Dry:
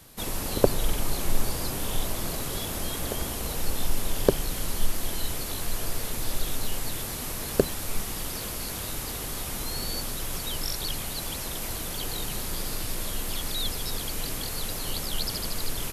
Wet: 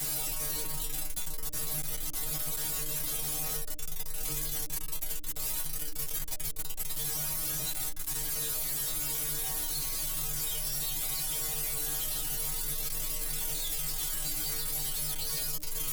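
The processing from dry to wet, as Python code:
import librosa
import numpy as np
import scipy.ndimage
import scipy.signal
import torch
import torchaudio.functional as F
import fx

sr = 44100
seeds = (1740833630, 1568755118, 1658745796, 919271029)

p1 = np.sign(x) * np.sqrt(np.mean(np.square(x)))
p2 = fx.low_shelf(p1, sr, hz=92.0, db=11.5)
p3 = fx.stiff_resonator(p2, sr, f0_hz=150.0, decay_s=0.47, stiffness=0.002)
p4 = fx.rider(p3, sr, range_db=10, speed_s=0.5)
p5 = p3 + (p4 * 10.0 ** (1.0 / 20.0))
p6 = fx.clip_asym(p5, sr, top_db=-21.5, bottom_db=-12.5)
p7 = fx.high_shelf(p6, sr, hz=5200.0, db=11.0)
p8 = fx.hum_notches(p7, sr, base_hz=60, count=10)
p9 = fx.env_flatten(p8, sr, amount_pct=50)
y = p9 * 10.0 ** (-8.5 / 20.0)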